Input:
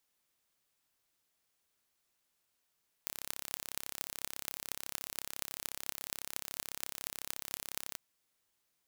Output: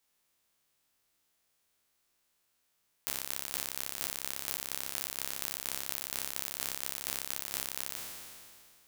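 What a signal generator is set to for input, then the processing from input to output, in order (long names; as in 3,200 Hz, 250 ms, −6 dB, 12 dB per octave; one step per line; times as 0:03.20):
impulse train 34 per second, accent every 8, −7.5 dBFS 4.90 s
peak hold with a decay on every bin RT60 2.22 s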